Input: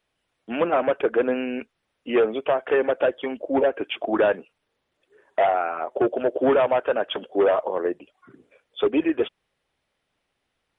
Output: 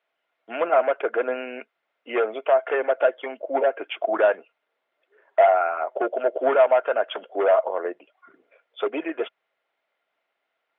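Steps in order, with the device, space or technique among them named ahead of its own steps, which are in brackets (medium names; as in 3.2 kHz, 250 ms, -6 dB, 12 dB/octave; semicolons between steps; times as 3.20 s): tin-can telephone (band-pass 500–2800 Hz; small resonant body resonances 660/1400/2100 Hz, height 8 dB)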